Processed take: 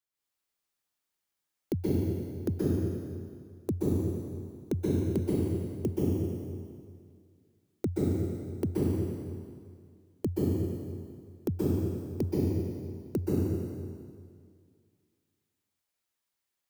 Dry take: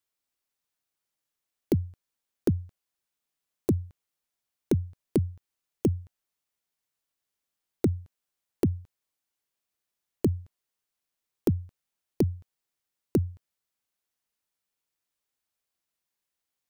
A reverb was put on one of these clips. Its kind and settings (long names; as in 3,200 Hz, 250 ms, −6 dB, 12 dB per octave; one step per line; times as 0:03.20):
dense smooth reverb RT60 2.1 s, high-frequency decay 0.9×, pre-delay 115 ms, DRR −7.5 dB
level −7 dB